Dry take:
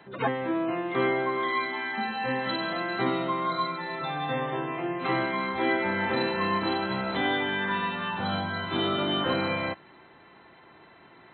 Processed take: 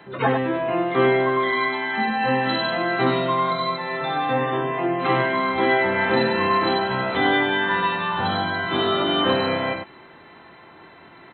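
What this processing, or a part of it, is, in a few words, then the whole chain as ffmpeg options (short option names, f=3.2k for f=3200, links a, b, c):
slapback doubling: -filter_complex "[0:a]asplit=3[a][b][c];[b]adelay=23,volume=-8dB[d];[c]adelay=99,volume=-6dB[e];[a][d][e]amix=inputs=3:normalize=0,volume=5.5dB"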